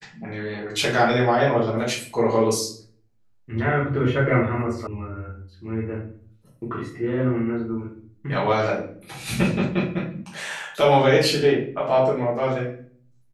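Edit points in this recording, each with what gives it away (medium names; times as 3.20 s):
4.87 s: sound stops dead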